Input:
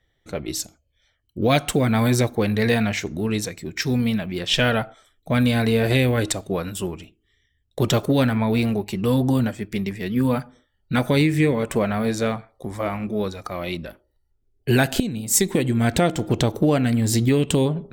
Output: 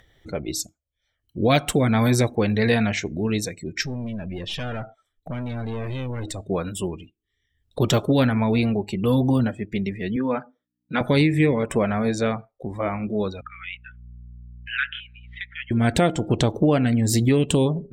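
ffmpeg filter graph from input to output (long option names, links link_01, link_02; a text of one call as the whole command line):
ffmpeg -i in.wav -filter_complex "[0:a]asettb=1/sr,asplit=3[link_01][link_02][link_03];[link_01]atrim=end=3.824[link_04];[link_02]atrim=start=3.82:end=6.48,asetpts=PTS-STARTPTS,afade=type=in:duration=0.004:curve=qsin,afade=type=out:start_time=2.656:duration=0.004:curve=qsin,equalizer=frequency=88:width=1.5:gain=4.5,aeval=exprs='(tanh(14.1*val(0)+0.4)-tanh(0.4))/14.1':channel_layout=same,acompressor=threshold=-27dB:ratio=3:attack=3.2:release=140:knee=1:detection=peak[link_05];[link_03]atrim=start=6.476[link_06];[link_04][link_05]acrossfade=duration=0.004:curve1=hsin:curve2=qsin[link_07];[link_07][link_06]acrossfade=duration=0.004:curve1=qsin:curve2=hsin,asettb=1/sr,asplit=3[link_08][link_09][link_10];[link_08]atrim=end=10.164[link_11];[link_09]atrim=start=10.16:end=11.01,asetpts=PTS-STARTPTS,afade=type=in:duration=0.004:curve=qsin,afade=type=out:start_time=0.846:duration=0.004:curve=qsin,agate=range=-33dB:threshold=-60dB:ratio=3:release=100:detection=peak,aeval=exprs='val(0)+0.002*(sin(2*PI*60*n/s)+sin(2*PI*2*60*n/s)/2+sin(2*PI*3*60*n/s)/3+sin(2*PI*4*60*n/s)/4+sin(2*PI*5*60*n/s)/5)':channel_layout=same,highpass=290,lowpass=3800[link_12];[link_10]atrim=start=11.006[link_13];[link_11][link_12]acrossfade=duration=0.004:curve1=hsin:curve2=qsin[link_14];[link_14][link_13]acrossfade=duration=0.004:curve1=qsin:curve2=hsin,asettb=1/sr,asplit=3[link_15][link_16][link_17];[link_15]atrim=end=13.414[link_18];[link_16]atrim=start=13.41:end=15.71,asetpts=PTS-STARTPTS,afade=type=in:duration=0.004:curve=qsin,afade=type=out:start_time=2.296:duration=0.004:curve=qsin,asuperpass=centerf=2100:order=12:qfactor=1,aeval=exprs='val(0)+0.00447*(sin(2*PI*60*n/s)+sin(2*PI*2*60*n/s)/2+sin(2*PI*3*60*n/s)/3+sin(2*PI*4*60*n/s)/4+sin(2*PI*5*60*n/s)/5)':channel_layout=same[link_19];[link_17]atrim=start=15.706[link_20];[link_18][link_19]acrossfade=duration=0.004:curve1=hsin:curve2=qsin[link_21];[link_21][link_20]acrossfade=duration=0.004:curve1=qsin:curve2=hsin,afftdn=noise_reduction=22:noise_floor=-39,acompressor=mode=upward:threshold=-33dB:ratio=2.5" out.wav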